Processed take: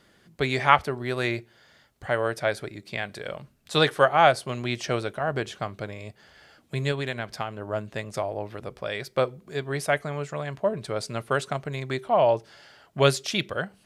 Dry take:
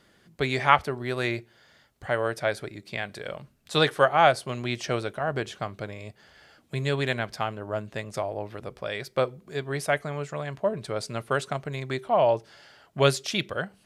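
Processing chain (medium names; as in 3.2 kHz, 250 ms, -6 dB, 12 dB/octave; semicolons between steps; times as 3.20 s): 6.91–7.59 s: compression, threshold -27 dBFS, peak gain reduction 6.5 dB; trim +1 dB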